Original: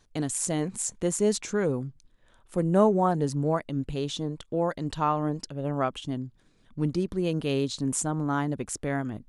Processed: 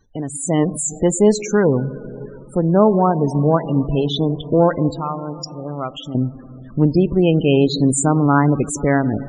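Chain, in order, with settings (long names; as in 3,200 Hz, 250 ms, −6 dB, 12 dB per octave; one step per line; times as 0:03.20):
harmonic generator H 4 −36 dB, 7 −40 dB, 8 −34 dB, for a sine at −8 dBFS
in parallel at +2 dB: downward compressor 10 to 1, threshold −39 dBFS, peak gain reduction 24 dB
0:04.91–0:06.15: on the sum: first-order pre-emphasis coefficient 0.8
on a send at −13.5 dB: convolution reverb RT60 3.6 s, pre-delay 13 ms
on the sum: spectral peaks only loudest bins 32
automatic gain control gain up to 13 dB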